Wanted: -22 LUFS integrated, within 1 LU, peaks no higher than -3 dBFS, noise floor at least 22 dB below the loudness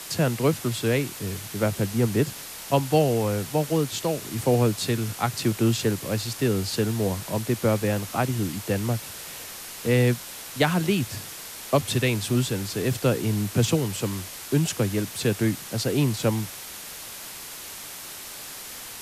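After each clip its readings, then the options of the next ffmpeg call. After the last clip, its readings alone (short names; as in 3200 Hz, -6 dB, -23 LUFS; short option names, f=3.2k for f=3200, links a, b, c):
noise floor -39 dBFS; noise floor target -48 dBFS; loudness -25.5 LUFS; peak -8.0 dBFS; loudness target -22.0 LUFS
-> -af "afftdn=nr=9:nf=-39"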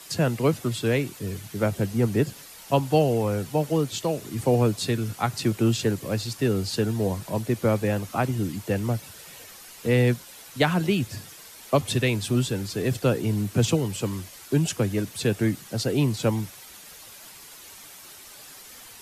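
noise floor -46 dBFS; noise floor target -48 dBFS
-> -af "afftdn=nr=6:nf=-46"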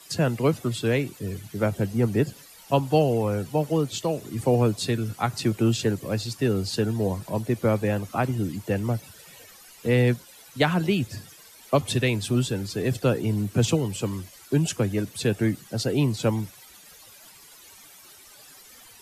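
noise floor -50 dBFS; loudness -25.5 LUFS; peak -8.0 dBFS; loudness target -22.0 LUFS
-> -af "volume=3.5dB"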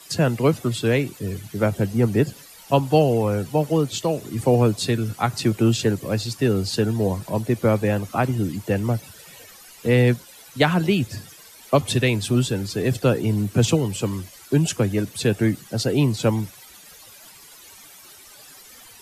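loudness -22.0 LUFS; peak -4.5 dBFS; noise floor -46 dBFS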